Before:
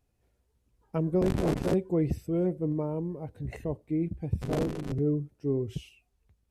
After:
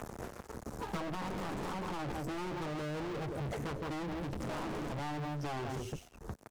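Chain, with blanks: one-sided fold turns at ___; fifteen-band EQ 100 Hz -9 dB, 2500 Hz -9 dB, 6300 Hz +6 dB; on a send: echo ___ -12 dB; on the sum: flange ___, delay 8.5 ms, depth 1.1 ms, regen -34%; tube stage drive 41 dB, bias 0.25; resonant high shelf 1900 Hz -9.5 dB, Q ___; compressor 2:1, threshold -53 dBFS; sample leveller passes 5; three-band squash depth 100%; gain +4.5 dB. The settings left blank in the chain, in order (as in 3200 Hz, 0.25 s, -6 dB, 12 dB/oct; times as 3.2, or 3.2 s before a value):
-29.5 dBFS, 0.166 s, 0.34 Hz, 1.5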